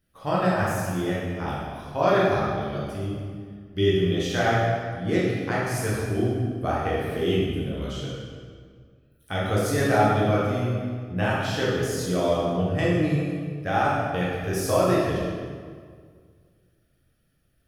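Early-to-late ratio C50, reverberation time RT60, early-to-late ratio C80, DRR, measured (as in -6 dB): -2.0 dB, 1.9 s, 1.0 dB, -7.0 dB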